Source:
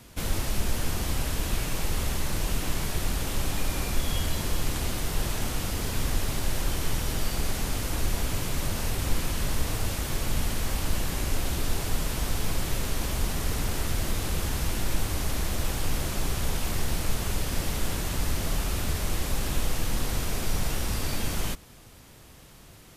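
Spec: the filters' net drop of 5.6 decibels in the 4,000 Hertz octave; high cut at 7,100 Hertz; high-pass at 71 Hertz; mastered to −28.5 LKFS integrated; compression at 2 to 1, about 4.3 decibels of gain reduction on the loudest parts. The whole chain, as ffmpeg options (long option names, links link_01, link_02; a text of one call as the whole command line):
ffmpeg -i in.wav -af "highpass=71,lowpass=7100,equalizer=frequency=4000:width_type=o:gain=-7,acompressor=threshold=-36dB:ratio=2,volume=9dB" out.wav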